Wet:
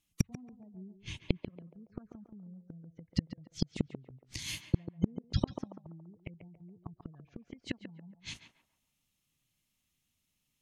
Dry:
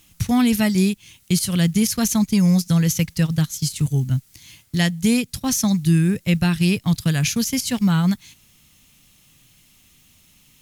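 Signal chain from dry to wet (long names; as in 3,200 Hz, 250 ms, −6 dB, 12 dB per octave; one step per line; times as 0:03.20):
noise gate −45 dBFS, range −32 dB
treble cut that deepens with the level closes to 610 Hz, closed at −14.5 dBFS
gate on every frequency bin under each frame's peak −30 dB strong
0:00.74–0:01.37: spectral tilt −2 dB per octave
gate with flip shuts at −19 dBFS, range −41 dB
on a send: feedback echo with a band-pass in the loop 140 ms, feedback 43%, band-pass 730 Hz, level −5.5 dB
on the sum: level +6.5 dB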